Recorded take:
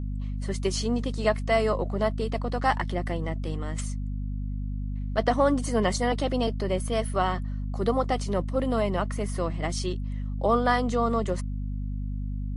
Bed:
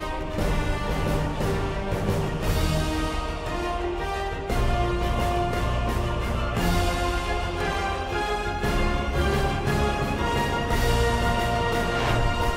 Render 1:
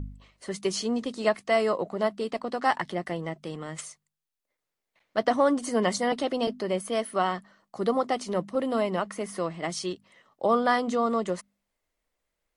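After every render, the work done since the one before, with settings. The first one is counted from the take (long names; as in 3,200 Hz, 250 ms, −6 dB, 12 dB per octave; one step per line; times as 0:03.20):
hum removal 50 Hz, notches 5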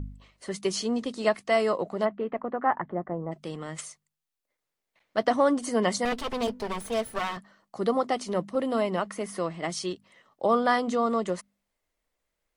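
0:02.04–0:03.31: low-pass filter 2,500 Hz → 1,100 Hz 24 dB per octave
0:06.05–0:07.37: lower of the sound and its delayed copy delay 4.5 ms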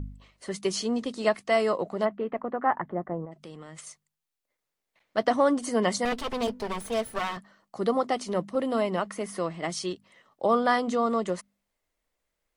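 0:03.25–0:03.87: downward compressor 2 to 1, threshold −45 dBFS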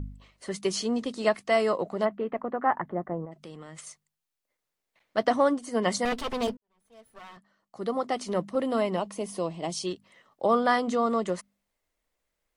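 0:05.38–0:05.86: expander for the loud parts, over −34 dBFS
0:06.57–0:08.29: fade in quadratic
0:08.97–0:09.87: flat-topped bell 1,600 Hz −11 dB 1 octave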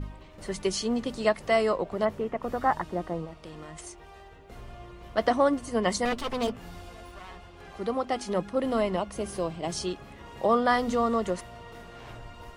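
mix in bed −21 dB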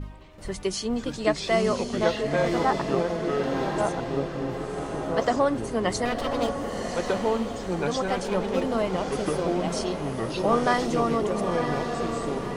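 feedback delay with all-pass diffusion 1,020 ms, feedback 44%, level −5.5 dB
delay with pitch and tempo change per echo 451 ms, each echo −4 semitones, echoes 2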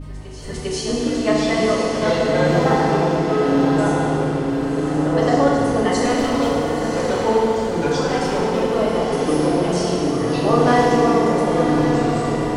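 backwards echo 399 ms −15.5 dB
feedback delay network reverb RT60 2.6 s, low-frequency decay 1.3×, high-frequency decay 0.8×, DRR −5.5 dB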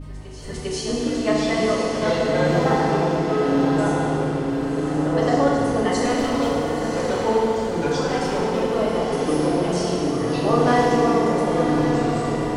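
level −2.5 dB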